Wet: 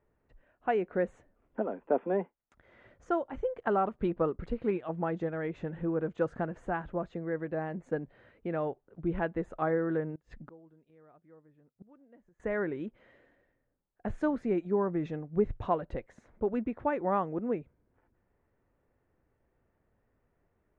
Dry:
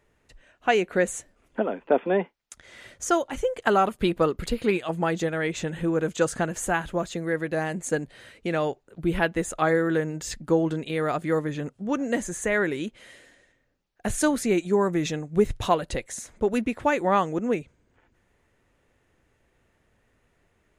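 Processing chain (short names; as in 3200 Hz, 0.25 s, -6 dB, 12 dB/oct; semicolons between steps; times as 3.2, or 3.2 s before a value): LPF 1300 Hz 12 dB/oct; 10.15–12.4 flipped gate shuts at -30 dBFS, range -26 dB; gain -6.5 dB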